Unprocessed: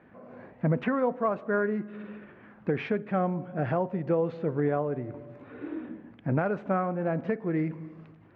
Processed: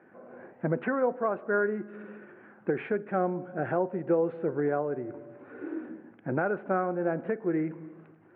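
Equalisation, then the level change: speaker cabinet 140–2800 Hz, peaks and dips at 360 Hz +9 dB, 520 Hz +4 dB, 790 Hz +5 dB, 1500 Hz +8 dB; -4.5 dB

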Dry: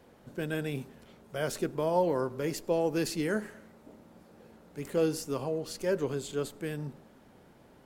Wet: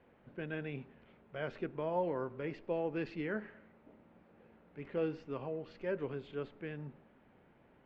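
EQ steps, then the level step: ladder low-pass 3100 Hz, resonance 35%; air absorption 76 m; 0.0 dB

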